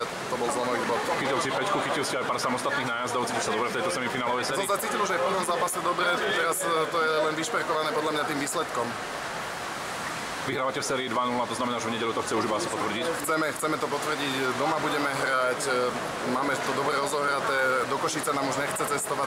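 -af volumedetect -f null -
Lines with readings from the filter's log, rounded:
mean_volume: -27.4 dB
max_volume: -15.3 dB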